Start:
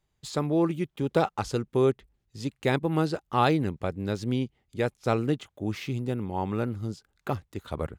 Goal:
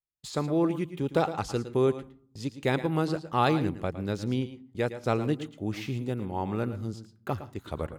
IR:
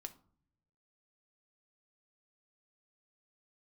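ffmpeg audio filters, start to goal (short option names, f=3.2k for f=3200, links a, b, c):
-filter_complex "[0:a]agate=range=-27dB:threshold=-48dB:ratio=16:detection=peak,asplit=2[a][b];[1:a]atrim=start_sample=2205,adelay=111[c];[b][c]afir=irnorm=-1:irlink=0,volume=-7dB[d];[a][d]amix=inputs=2:normalize=0,volume=-1.5dB"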